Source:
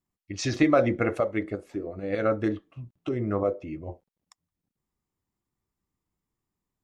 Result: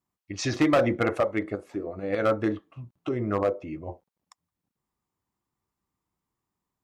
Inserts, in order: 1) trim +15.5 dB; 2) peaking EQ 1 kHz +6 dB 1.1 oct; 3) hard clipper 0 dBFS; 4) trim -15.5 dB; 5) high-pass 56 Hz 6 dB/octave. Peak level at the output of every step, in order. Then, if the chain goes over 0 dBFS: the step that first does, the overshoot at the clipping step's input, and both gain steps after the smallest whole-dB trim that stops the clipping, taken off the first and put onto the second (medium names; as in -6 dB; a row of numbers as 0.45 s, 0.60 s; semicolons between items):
+7.0 dBFS, +10.0 dBFS, 0.0 dBFS, -15.5 dBFS, -13.5 dBFS; step 1, 10.0 dB; step 1 +5.5 dB, step 4 -5.5 dB